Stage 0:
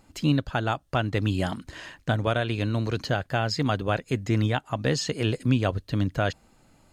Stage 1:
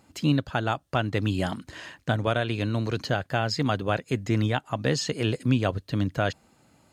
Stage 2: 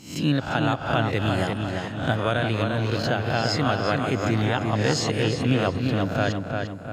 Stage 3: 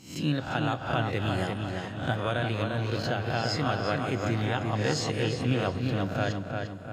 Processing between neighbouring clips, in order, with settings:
HPF 81 Hz
spectral swells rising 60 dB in 0.50 s; darkening echo 0.348 s, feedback 49%, low-pass 3400 Hz, level -4 dB
reverb, pre-delay 3 ms, DRR 10.5 dB; gain -5.5 dB

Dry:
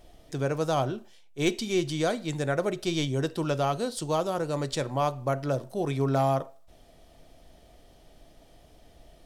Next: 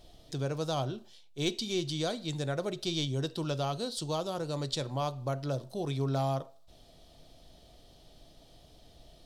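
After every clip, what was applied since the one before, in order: graphic EQ 125/2000/4000 Hz +4/-5/+10 dB; in parallel at -1 dB: compressor, threshold -35 dBFS, peak gain reduction 15.5 dB; on the sum: gain -8.5 dB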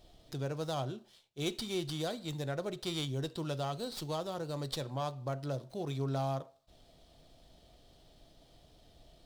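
running maximum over 3 samples; gain -3.5 dB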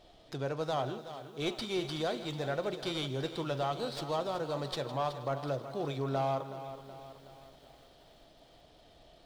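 overdrive pedal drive 11 dB, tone 1900 Hz, clips at -22 dBFS; thinning echo 0.159 s, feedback 53%, level -15 dB; lo-fi delay 0.373 s, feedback 55%, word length 10-bit, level -12 dB; gain +2 dB

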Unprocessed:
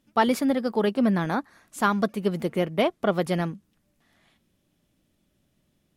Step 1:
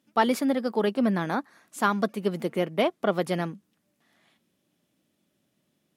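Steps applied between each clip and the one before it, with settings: HPF 170 Hz 12 dB/oct; gain -1 dB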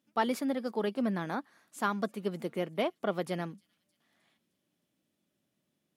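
thin delay 0.309 s, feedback 53%, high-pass 4100 Hz, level -22.5 dB; gain -7 dB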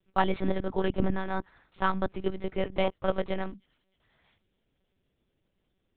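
monotone LPC vocoder at 8 kHz 190 Hz; gain +4.5 dB

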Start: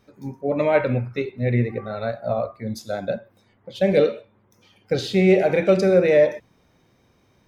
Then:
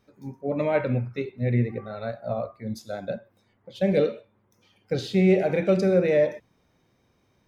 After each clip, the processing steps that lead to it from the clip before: dynamic EQ 170 Hz, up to +5 dB, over -30 dBFS, Q 0.75; gain -6 dB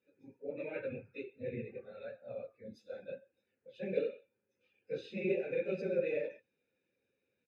phase scrambler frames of 50 ms; vowel filter e; comb 0.8 ms, depth 78%; gain -1 dB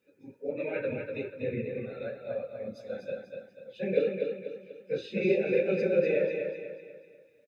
feedback echo 0.244 s, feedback 41%, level -5.5 dB; gain +7.5 dB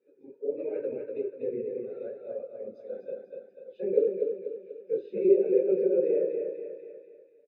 band-pass 400 Hz, Q 4.6; mismatched tape noise reduction encoder only; gain +7 dB

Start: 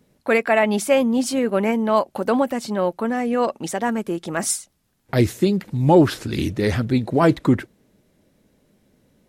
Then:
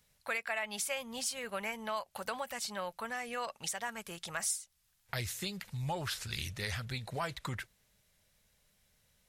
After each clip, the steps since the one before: passive tone stack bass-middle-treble 10-0-10; compressor 3:1, threshold -35 dBFS, peak gain reduction 12 dB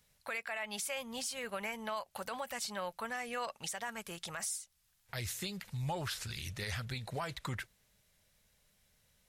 limiter -28 dBFS, peak gain reduction 7 dB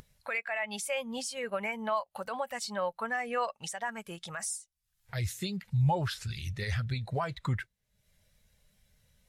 in parallel at +1 dB: upward compressor, threshold -41 dBFS; on the sum: spectral expander 1.5:1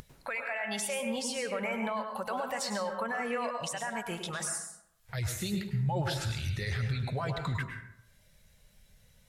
limiter -30.5 dBFS, peak gain reduction 11 dB; plate-style reverb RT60 0.76 s, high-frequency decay 0.5×, pre-delay 90 ms, DRR 4 dB; gain +4.5 dB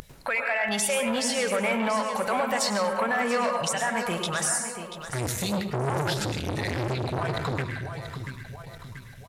feedback echo 0.685 s, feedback 47%, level -11.5 dB; core saturation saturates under 1000 Hz; gain +9 dB

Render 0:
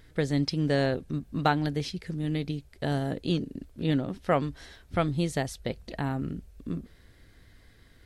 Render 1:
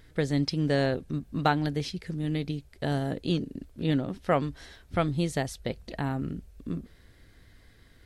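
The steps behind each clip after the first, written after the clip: nothing audible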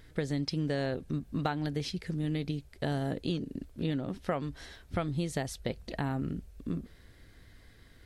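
compressor 6:1, threshold -28 dBFS, peak gain reduction 9.5 dB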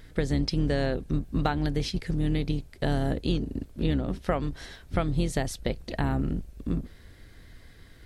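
octaver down 2 oct, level -1 dB; gain +4.5 dB

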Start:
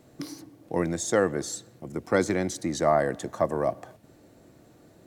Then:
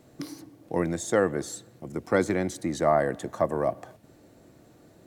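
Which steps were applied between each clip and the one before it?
dynamic EQ 5500 Hz, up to -6 dB, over -49 dBFS, Q 1.3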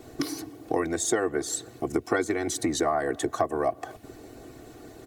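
comb 2.7 ms, depth 98%; harmonic-percussive split percussive +9 dB; compressor 4:1, threshold -27 dBFS, peak gain reduction 15 dB; gain +2.5 dB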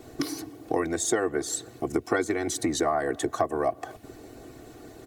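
nothing audible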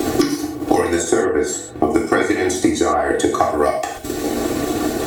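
transient shaper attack +4 dB, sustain -10 dB; non-linear reverb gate 0.16 s falling, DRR -3.5 dB; three-band squash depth 100%; gain +3.5 dB

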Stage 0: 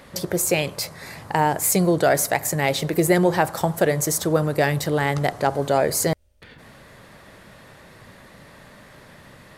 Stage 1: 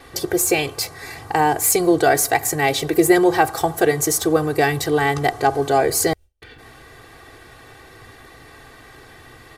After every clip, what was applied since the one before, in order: gate with hold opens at -45 dBFS; comb 2.6 ms, depth 87%; gain +1 dB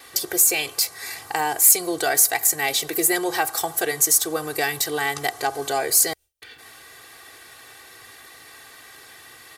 tilt +3.5 dB/oct; in parallel at -2 dB: compressor, threshold -20 dBFS, peak gain reduction 16.5 dB; on the sum: gain -8.5 dB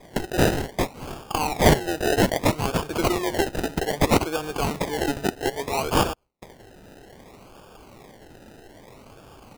decimation with a swept rate 31×, swing 60% 0.62 Hz; gain -1.5 dB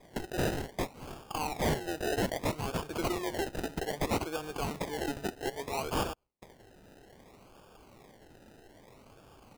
overloaded stage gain 16 dB; gain -9 dB

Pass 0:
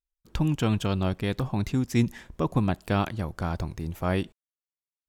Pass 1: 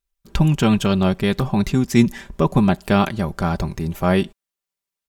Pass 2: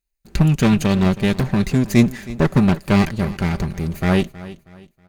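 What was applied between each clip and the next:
comb 5.1 ms, depth 51%; gain +8 dB
minimum comb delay 0.45 ms; feedback echo 0.319 s, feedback 34%, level -17.5 dB; gain +1 dB

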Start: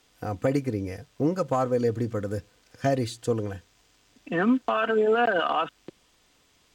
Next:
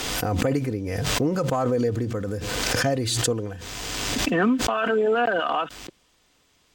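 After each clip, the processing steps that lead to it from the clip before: backwards sustainer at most 22 dB/s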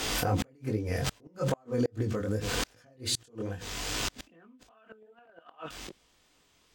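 chorus 2.5 Hz, delay 18 ms, depth 5.9 ms; flipped gate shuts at -17 dBFS, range -34 dB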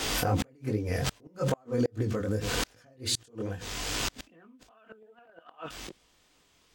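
vibrato 13 Hz 32 cents; gain +1 dB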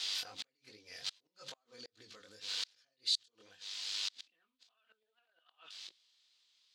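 band-pass 4100 Hz, Q 3.2; gain +1 dB

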